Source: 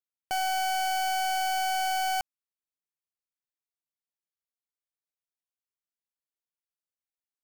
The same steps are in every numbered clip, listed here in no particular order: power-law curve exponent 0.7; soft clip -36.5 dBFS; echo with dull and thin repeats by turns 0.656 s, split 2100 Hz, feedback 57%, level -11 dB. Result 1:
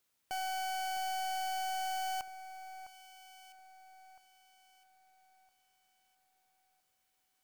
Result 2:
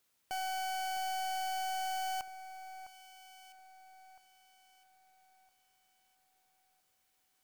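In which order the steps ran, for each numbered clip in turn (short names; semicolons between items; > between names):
soft clip > power-law curve > echo with dull and thin repeats by turns; power-law curve > soft clip > echo with dull and thin repeats by turns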